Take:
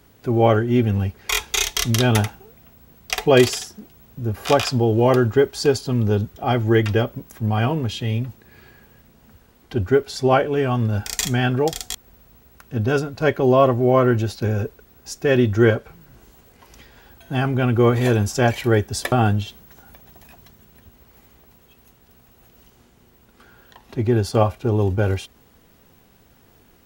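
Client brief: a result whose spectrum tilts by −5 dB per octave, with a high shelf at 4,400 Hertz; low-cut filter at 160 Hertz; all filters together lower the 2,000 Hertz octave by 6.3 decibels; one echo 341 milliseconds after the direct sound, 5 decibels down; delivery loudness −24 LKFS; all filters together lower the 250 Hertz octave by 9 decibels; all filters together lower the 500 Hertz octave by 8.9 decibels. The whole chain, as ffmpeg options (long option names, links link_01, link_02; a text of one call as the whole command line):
ffmpeg -i in.wav -af "highpass=160,equalizer=frequency=250:width_type=o:gain=-7.5,equalizer=frequency=500:width_type=o:gain=-8.5,equalizer=frequency=2000:width_type=o:gain=-6.5,highshelf=frequency=4400:gain=-7.5,aecho=1:1:341:0.562,volume=3dB" out.wav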